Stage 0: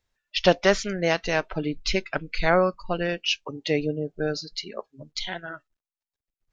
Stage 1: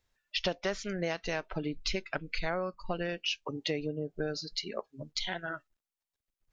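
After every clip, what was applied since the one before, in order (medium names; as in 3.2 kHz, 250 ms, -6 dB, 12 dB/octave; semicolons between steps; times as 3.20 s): compression 4:1, threshold -31 dBFS, peak gain reduction 16 dB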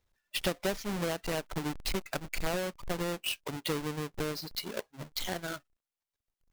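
square wave that keeps the level; trim -4 dB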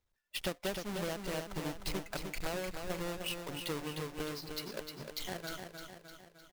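feedback delay 305 ms, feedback 53%, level -6 dB; trim -5.5 dB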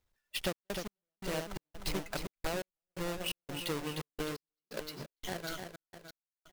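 trance gate "xxx.x..xx." 86 bpm -60 dB; trim +2 dB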